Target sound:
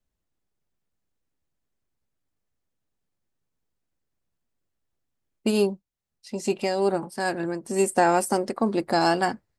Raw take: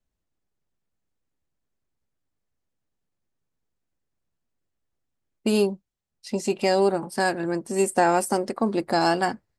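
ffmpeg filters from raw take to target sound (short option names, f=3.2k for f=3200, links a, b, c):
-filter_complex "[0:a]asplit=3[a][b][c];[a]afade=t=out:st=5.5:d=0.02[d];[b]tremolo=f=2.3:d=0.48,afade=t=in:st=5.5:d=0.02,afade=t=out:st=7.62:d=0.02[e];[c]afade=t=in:st=7.62:d=0.02[f];[d][e][f]amix=inputs=3:normalize=0"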